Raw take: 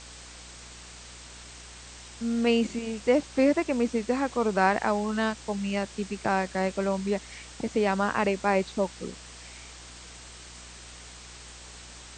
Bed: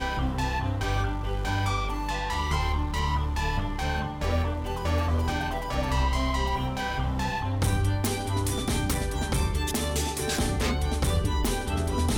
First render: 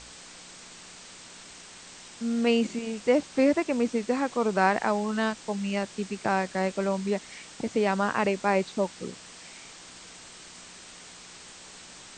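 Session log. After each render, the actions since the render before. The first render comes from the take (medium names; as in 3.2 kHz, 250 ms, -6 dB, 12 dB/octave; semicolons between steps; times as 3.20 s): de-hum 60 Hz, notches 2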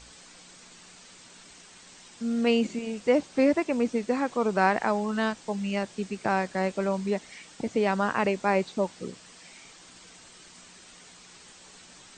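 noise reduction 6 dB, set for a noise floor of -47 dBFS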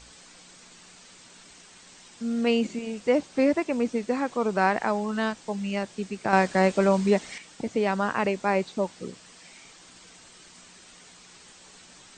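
6.33–7.38 s: gain +6.5 dB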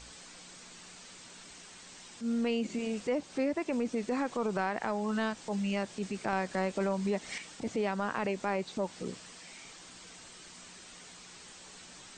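transient shaper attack -7 dB, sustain +1 dB; compression 6:1, threshold -28 dBFS, peak gain reduction 11.5 dB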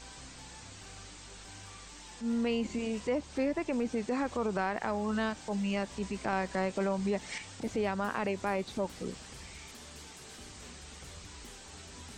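add bed -25.5 dB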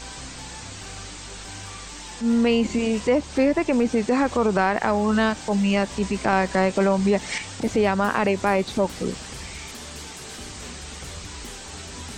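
trim +11.5 dB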